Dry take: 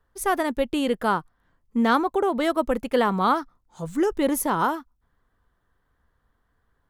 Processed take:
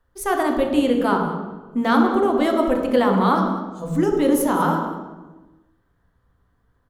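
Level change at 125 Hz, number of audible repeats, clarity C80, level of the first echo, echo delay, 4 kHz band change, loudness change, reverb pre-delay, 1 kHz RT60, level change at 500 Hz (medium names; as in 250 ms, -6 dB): +9.0 dB, 1, 5.5 dB, -16.0 dB, 194 ms, +1.5 dB, +4.0 dB, 3 ms, 1.1 s, +4.5 dB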